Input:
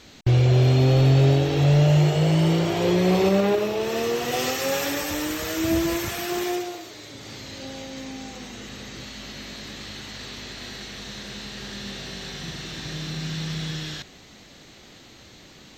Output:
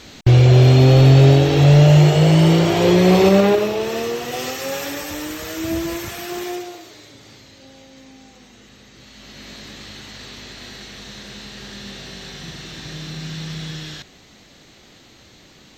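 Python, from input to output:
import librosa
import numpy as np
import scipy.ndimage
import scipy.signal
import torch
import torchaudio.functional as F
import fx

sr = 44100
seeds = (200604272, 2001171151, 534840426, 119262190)

y = fx.gain(x, sr, db=fx.line((3.41, 7.0), (4.3, -1.0), (6.94, -1.0), (7.56, -8.5), (8.93, -8.5), (9.5, 0.0)))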